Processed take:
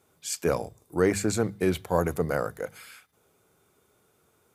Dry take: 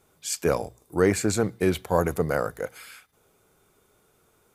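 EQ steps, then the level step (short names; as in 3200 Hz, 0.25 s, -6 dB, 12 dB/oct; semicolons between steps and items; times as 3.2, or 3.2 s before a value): HPF 82 Hz; low shelf 120 Hz +5.5 dB; notches 50/100/150/200 Hz; -2.5 dB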